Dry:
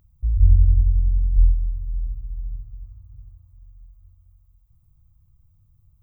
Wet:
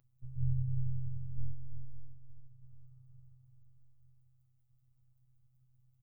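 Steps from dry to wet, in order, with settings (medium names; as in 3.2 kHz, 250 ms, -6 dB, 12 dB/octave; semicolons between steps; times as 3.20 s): tracing distortion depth 0.2 ms; flange 0.54 Hz, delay 6.7 ms, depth 6.9 ms, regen -67%; robot voice 128 Hz; delay 335 ms -9.5 dB; 1.92–2.62 s: upward expansion 1.5:1, over -39 dBFS; trim -6 dB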